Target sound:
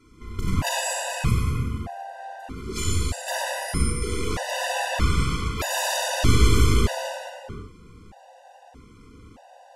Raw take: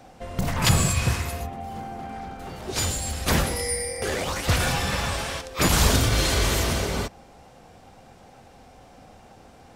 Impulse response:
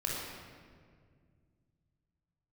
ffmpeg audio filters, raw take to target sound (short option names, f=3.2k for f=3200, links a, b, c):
-filter_complex "[0:a]aeval=exprs='0.473*(cos(1*acos(clip(val(0)/0.473,-1,1)))-cos(1*PI/2))+0.0422*(cos(4*acos(clip(val(0)/0.473,-1,1)))-cos(4*PI/2))+0.0473*(cos(6*acos(clip(val(0)/0.473,-1,1)))-cos(6*PI/2))':c=same[a];[1:a]atrim=start_sample=2205,afade=t=out:st=0.41:d=0.01,atrim=end_sample=18522,asetrate=25578,aresample=44100[b];[a][b]afir=irnorm=-1:irlink=0,afftfilt=real='re*gt(sin(2*PI*0.8*pts/sr)*(1-2*mod(floor(b*sr/1024/500),2)),0)':imag='im*gt(sin(2*PI*0.8*pts/sr)*(1-2*mod(floor(b*sr/1024/500),2)),0)':win_size=1024:overlap=0.75,volume=-6.5dB"